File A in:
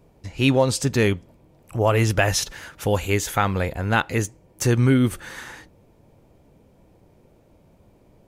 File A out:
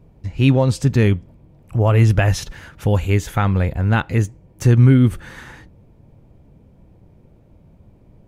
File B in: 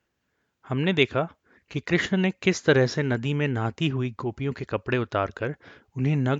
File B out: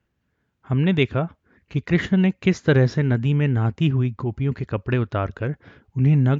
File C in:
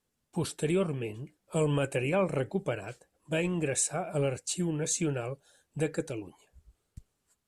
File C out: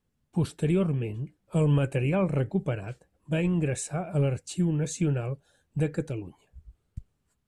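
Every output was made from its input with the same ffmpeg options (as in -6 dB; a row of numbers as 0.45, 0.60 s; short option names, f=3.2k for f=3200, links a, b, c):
-af "bass=f=250:g=10,treble=f=4k:g=-6,volume=-1dB"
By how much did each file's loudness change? +4.5, +4.0, +3.0 LU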